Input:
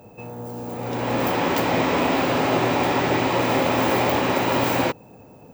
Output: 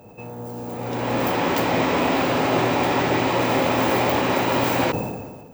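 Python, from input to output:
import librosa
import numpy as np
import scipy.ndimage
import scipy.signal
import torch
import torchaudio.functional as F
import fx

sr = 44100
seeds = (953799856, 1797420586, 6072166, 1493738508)

y = fx.sustainer(x, sr, db_per_s=39.0)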